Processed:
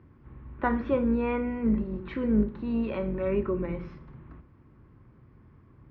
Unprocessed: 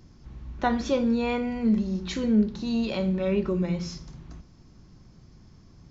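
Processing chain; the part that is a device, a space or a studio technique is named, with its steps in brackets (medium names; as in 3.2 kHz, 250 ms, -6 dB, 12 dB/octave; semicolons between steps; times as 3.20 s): sub-octave bass pedal (octave divider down 2 oct, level -6 dB; cabinet simulation 60–2200 Hz, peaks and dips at 62 Hz -3 dB, 180 Hz -9 dB, 710 Hz -7 dB, 1.1 kHz +3 dB)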